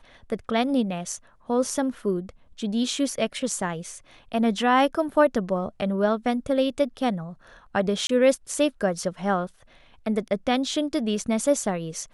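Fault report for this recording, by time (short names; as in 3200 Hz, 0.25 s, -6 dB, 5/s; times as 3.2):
8.07–8.09 gap 23 ms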